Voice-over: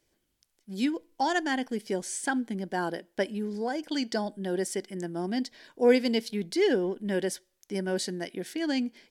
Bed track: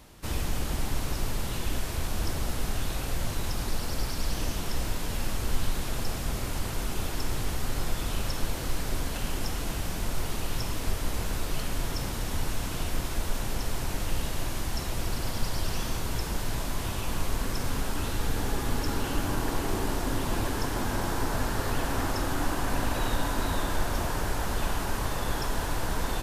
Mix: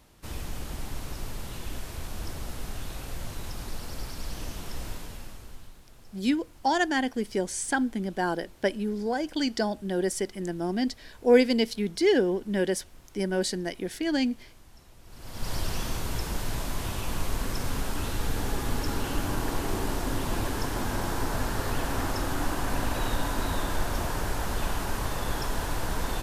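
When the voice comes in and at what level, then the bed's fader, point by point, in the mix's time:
5.45 s, +2.5 dB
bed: 4.93 s -6 dB
5.81 s -22.5 dB
15.02 s -22.5 dB
15.51 s -0.5 dB

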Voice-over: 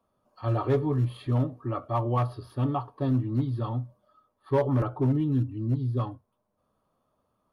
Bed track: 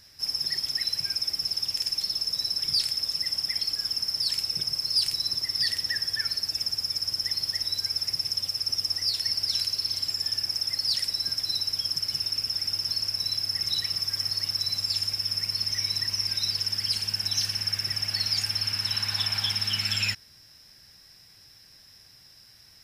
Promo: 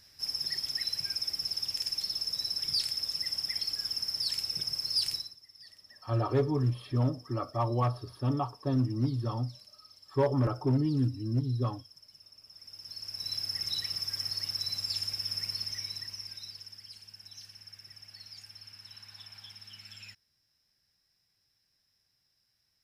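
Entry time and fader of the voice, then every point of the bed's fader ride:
5.65 s, -2.5 dB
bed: 5.16 s -5 dB
5.37 s -27 dB
12.40 s -27 dB
13.35 s -6 dB
15.48 s -6 dB
16.91 s -22 dB

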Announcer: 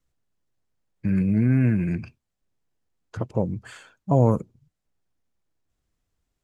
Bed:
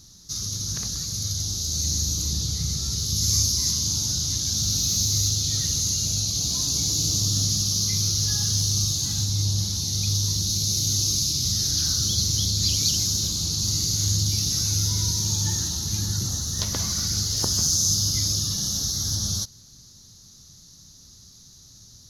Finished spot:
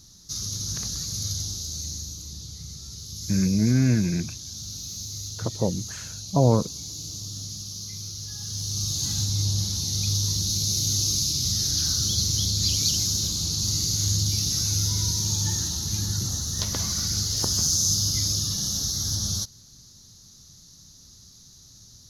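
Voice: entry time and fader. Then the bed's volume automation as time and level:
2.25 s, -0.5 dB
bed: 1.32 s -1.5 dB
2.22 s -12.5 dB
8.32 s -12.5 dB
9.05 s -1 dB

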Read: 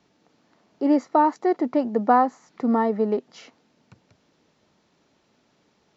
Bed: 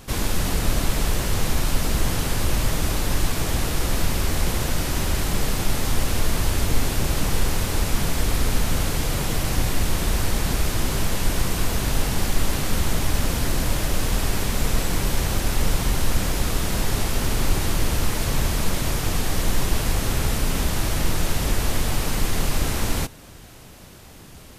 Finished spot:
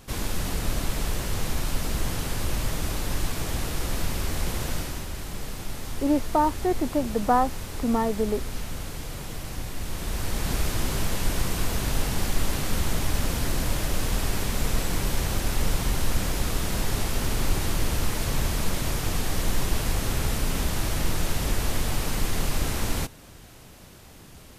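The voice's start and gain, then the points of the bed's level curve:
5.20 s, -3.5 dB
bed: 4.76 s -5.5 dB
5.07 s -11.5 dB
9.73 s -11.5 dB
10.55 s -3.5 dB

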